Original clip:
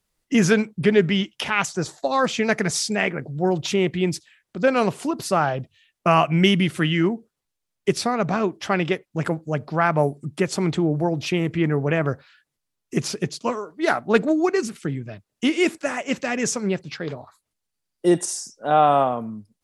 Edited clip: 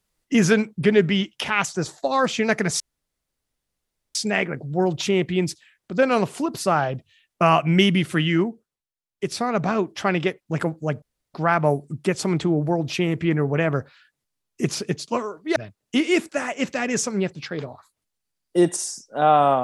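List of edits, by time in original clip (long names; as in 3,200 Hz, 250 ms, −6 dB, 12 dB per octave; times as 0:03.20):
0:02.80: splice in room tone 1.35 s
0:07.04–0:08.19: duck −13 dB, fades 0.46 s
0:09.67: splice in room tone 0.32 s
0:13.89–0:15.05: remove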